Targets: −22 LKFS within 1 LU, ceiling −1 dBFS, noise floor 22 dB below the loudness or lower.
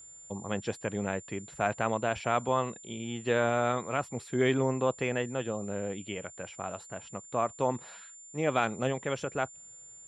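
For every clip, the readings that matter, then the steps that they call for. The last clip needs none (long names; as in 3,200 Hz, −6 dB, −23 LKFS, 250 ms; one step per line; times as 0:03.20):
interfering tone 7,200 Hz; level of the tone −48 dBFS; integrated loudness −32.0 LKFS; sample peak −12.0 dBFS; target loudness −22.0 LKFS
→ notch filter 7,200 Hz, Q 30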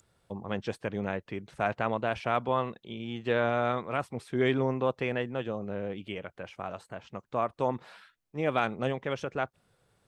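interfering tone none found; integrated loudness −32.0 LKFS; sample peak −12.5 dBFS; target loudness −22.0 LKFS
→ level +10 dB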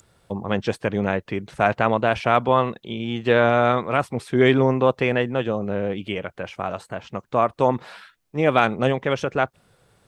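integrated loudness −22.0 LKFS; sample peak −2.5 dBFS; background noise floor −63 dBFS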